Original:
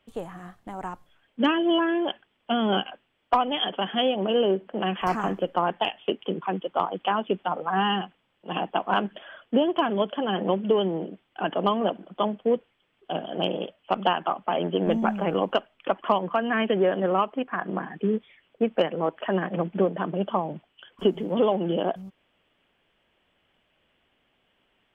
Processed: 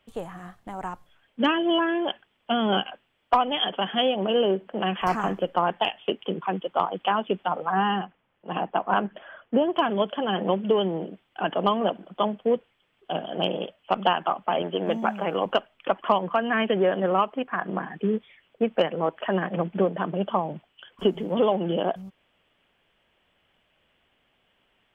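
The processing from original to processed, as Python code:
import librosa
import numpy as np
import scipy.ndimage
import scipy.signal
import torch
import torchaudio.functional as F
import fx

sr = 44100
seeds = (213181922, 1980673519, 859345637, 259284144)

y = fx.lowpass(x, sr, hz=2100.0, slope=12, at=(7.72, 9.73))
y = fx.highpass(y, sr, hz=310.0, slope=6, at=(14.62, 15.46))
y = fx.peak_eq(y, sr, hz=300.0, db=-3.0, octaves=1.1)
y = y * 10.0 ** (1.5 / 20.0)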